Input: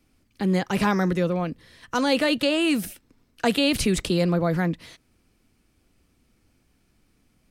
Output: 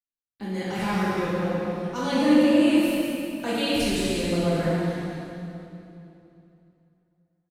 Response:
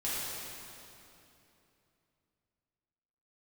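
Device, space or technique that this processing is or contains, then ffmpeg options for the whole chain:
cave: -filter_complex "[0:a]agate=range=-41dB:threshold=-52dB:ratio=16:detection=peak,asettb=1/sr,asplit=3[link_01][link_02][link_03];[link_01]atrim=end=2.124[link_04];[link_02]atrim=start=2.12:end=2.61,asetpts=PTS-STARTPTS,afade=type=in:duration=0.004:curve=qsin,afade=type=out:start_time=0.486:duration=0.004:curve=qsin,equalizer=frequency=125:width_type=o:width=1:gain=6,equalizer=frequency=250:width_type=o:width=1:gain=8,equalizer=frequency=4000:width_type=o:width=1:gain=-9[link_05];[link_03]atrim=start=2.606[link_06];[link_04][link_05]acrossfade=duration=0.004:curve1=hsin:curve2=qsin[link_07];[link_07][link_06]acrossfade=duration=0.004:curve1=qsin:curve2=hsin,aecho=1:1:196:0.335[link_08];[1:a]atrim=start_sample=2205[link_09];[link_08][link_09]afir=irnorm=-1:irlink=0,volume=-8.5dB"

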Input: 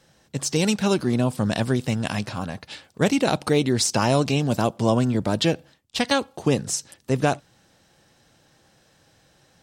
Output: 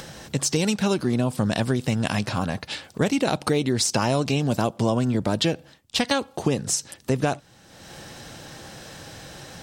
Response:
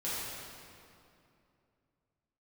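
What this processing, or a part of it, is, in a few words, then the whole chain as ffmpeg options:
upward and downward compression: -af "acompressor=mode=upward:threshold=-35dB:ratio=2.5,acompressor=threshold=-27dB:ratio=3,volume=6dB"

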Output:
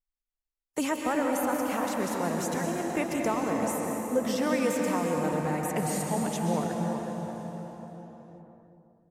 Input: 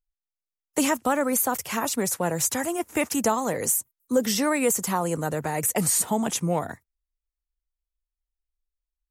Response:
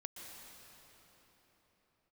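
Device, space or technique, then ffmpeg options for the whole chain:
swimming-pool hall: -filter_complex "[1:a]atrim=start_sample=2205[link_01];[0:a][link_01]afir=irnorm=-1:irlink=0,highshelf=frequency=5300:gain=-7,asplit=2[link_02][link_03];[link_03]adelay=371,lowpass=frequency=860:poles=1,volume=-5dB,asplit=2[link_04][link_05];[link_05]adelay=371,lowpass=frequency=860:poles=1,volume=0.41,asplit=2[link_06][link_07];[link_07]adelay=371,lowpass=frequency=860:poles=1,volume=0.41,asplit=2[link_08][link_09];[link_09]adelay=371,lowpass=frequency=860:poles=1,volume=0.41,asplit=2[link_10][link_11];[link_11]adelay=371,lowpass=frequency=860:poles=1,volume=0.41[link_12];[link_02][link_04][link_06][link_08][link_10][link_12]amix=inputs=6:normalize=0,adynamicequalizer=threshold=0.00355:dfrequency=4600:dqfactor=0.7:tfrequency=4600:tqfactor=0.7:attack=5:release=100:ratio=0.375:range=2:mode=cutabove:tftype=highshelf"

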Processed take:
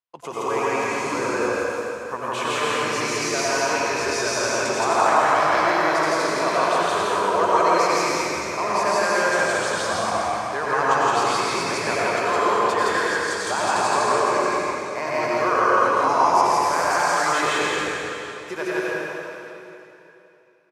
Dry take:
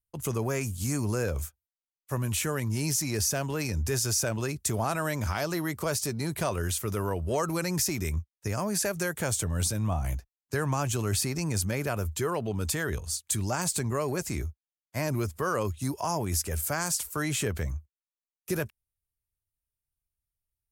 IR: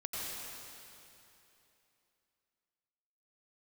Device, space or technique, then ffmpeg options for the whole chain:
station announcement: -filter_complex "[0:a]highpass=470,lowpass=3900,equalizer=frequency=1000:width_type=o:width=0.57:gain=7,aecho=1:1:166.2|247.8:1|0.316[link_01];[1:a]atrim=start_sample=2205[link_02];[link_01][link_02]afir=irnorm=-1:irlink=0,volume=7dB"

